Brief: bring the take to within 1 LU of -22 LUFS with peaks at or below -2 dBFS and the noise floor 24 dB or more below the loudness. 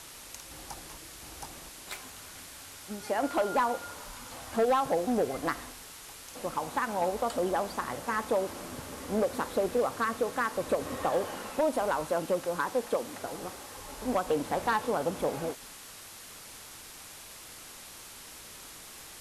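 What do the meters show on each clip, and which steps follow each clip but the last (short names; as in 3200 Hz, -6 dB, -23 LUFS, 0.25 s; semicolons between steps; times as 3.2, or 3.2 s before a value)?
clipped 0.5%; flat tops at -20.5 dBFS; noise floor -48 dBFS; noise floor target -56 dBFS; loudness -31.5 LUFS; peak -20.5 dBFS; loudness target -22.0 LUFS
-> clip repair -20.5 dBFS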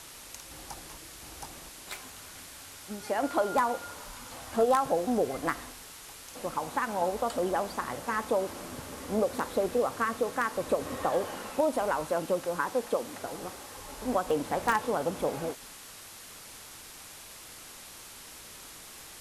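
clipped 0.0%; noise floor -48 dBFS; noise floor target -55 dBFS
-> denoiser 7 dB, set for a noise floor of -48 dBFS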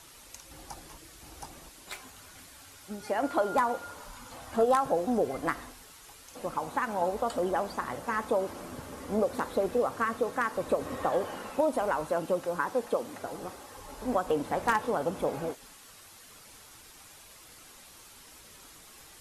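noise floor -53 dBFS; noise floor target -55 dBFS
-> denoiser 6 dB, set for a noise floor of -53 dBFS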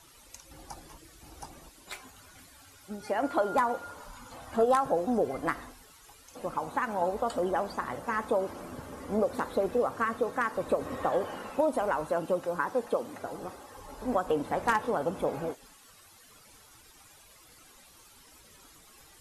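noise floor -57 dBFS; loudness -30.5 LUFS; peak -11.5 dBFS; loudness target -22.0 LUFS
-> gain +8.5 dB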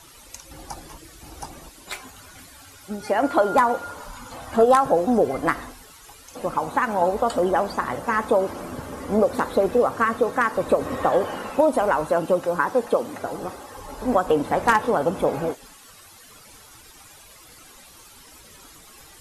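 loudness -22.0 LUFS; peak -3.0 dBFS; noise floor -48 dBFS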